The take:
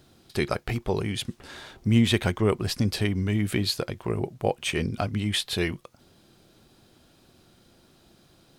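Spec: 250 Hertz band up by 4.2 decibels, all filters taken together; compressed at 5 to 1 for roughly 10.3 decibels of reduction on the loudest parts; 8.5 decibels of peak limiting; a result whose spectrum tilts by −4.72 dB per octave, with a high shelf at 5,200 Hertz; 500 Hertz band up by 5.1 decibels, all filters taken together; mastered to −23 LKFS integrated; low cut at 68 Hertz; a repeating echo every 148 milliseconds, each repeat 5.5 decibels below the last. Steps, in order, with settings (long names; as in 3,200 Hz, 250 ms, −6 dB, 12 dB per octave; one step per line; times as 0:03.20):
high-pass filter 68 Hz
parametric band 250 Hz +4 dB
parametric band 500 Hz +5 dB
high-shelf EQ 5,200 Hz +5.5 dB
downward compressor 5 to 1, threshold −24 dBFS
brickwall limiter −19.5 dBFS
repeating echo 148 ms, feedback 53%, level −5.5 dB
level +7.5 dB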